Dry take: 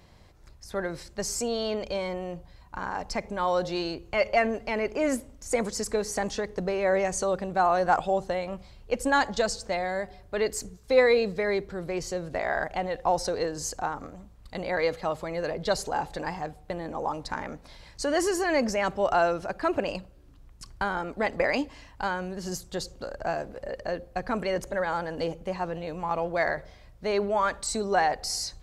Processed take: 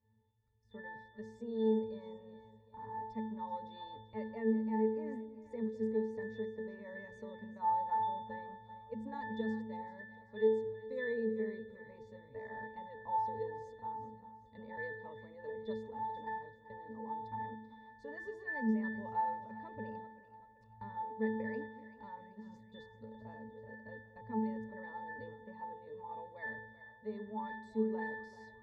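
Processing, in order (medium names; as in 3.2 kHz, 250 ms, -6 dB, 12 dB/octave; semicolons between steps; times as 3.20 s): spectral noise reduction 9 dB; pitch-class resonator A, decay 0.73 s; two-band feedback delay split 550 Hz, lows 203 ms, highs 386 ms, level -14 dB; trim +8 dB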